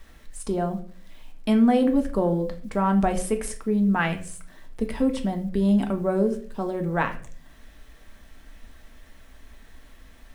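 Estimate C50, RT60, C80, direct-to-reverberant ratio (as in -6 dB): 13.0 dB, 0.50 s, 17.0 dB, 4.0 dB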